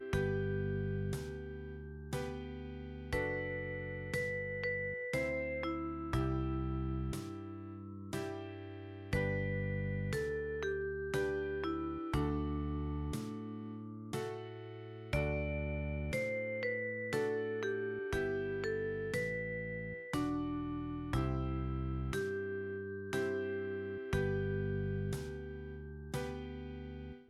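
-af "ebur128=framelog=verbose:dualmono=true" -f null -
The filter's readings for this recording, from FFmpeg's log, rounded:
Integrated loudness:
  I:         -35.7 LUFS
  Threshold: -45.7 LUFS
Loudness range:
  LRA:         3.1 LU
  Threshold: -55.6 LUFS
  LRA low:   -37.4 LUFS
  LRA high:  -34.3 LUFS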